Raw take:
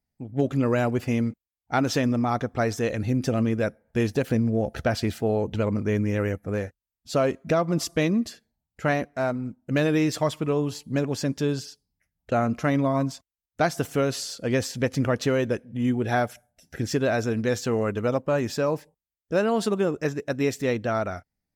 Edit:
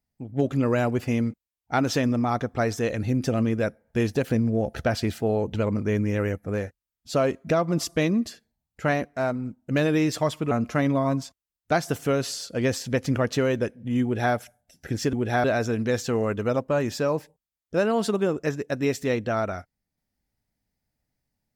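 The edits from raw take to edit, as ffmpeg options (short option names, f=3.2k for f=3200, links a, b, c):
-filter_complex "[0:a]asplit=4[a][b][c][d];[a]atrim=end=10.512[e];[b]atrim=start=12.398:end=17.022[f];[c]atrim=start=15.918:end=16.232[g];[d]atrim=start=17.018[h];[e][f]acrossfade=d=0.004:c1=hsin:c2=hsin[i];[i][g]acrossfade=d=0.004:c1=hsin:c2=hsin[j];[j][h]acrossfade=d=0.004:c1=hsin:c2=hsin"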